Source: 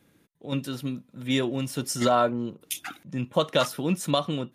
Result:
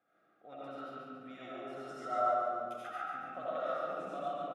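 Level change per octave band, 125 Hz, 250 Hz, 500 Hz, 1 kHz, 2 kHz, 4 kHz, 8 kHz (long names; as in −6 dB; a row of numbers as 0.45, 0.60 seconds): −27.5 dB, −21.0 dB, −10.5 dB, −5.5 dB, −11.5 dB, −25.0 dB, below −30 dB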